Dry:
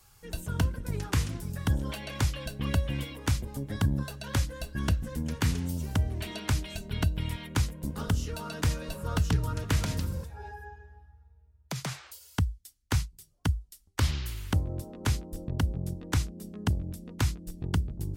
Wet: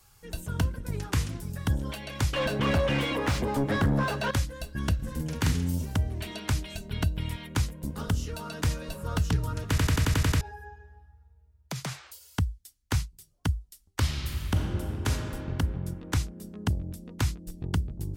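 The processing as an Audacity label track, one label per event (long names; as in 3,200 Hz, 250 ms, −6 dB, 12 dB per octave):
2.330000	4.310000	mid-hump overdrive drive 31 dB, tone 1,100 Hz, clips at −15 dBFS
4.950000	5.850000	double-tracking delay 45 ms −3 dB
9.690000	9.690000	stutter in place 0.09 s, 8 plays
14.030000	15.090000	thrown reverb, RT60 2.6 s, DRR 1 dB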